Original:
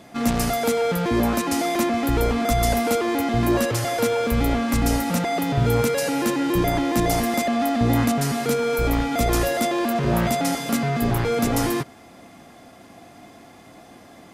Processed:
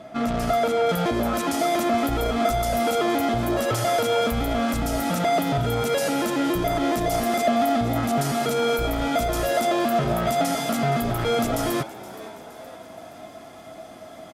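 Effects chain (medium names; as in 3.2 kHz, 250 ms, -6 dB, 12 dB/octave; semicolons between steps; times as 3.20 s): treble shelf 5 kHz -10 dB, from 0.89 s +2 dB; peak limiter -17.5 dBFS, peak gain reduction 9.5 dB; small resonant body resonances 640/1300/3300 Hz, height 16 dB, ringing for 90 ms; frequency-shifting echo 470 ms, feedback 51%, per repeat +89 Hz, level -17 dB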